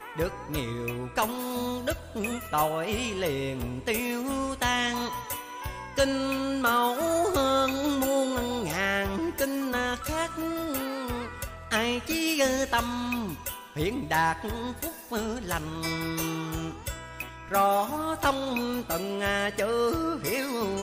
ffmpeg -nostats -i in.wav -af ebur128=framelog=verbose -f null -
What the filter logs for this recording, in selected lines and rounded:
Integrated loudness:
  I:         -28.6 LUFS
  Threshold: -38.7 LUFS
Loudness range:
  LRA:         4.1 LU
  Threshold: -48.6 LUFS
  LRA low:   -30.4 LUFS
  LRA high:  -26.3 LUFS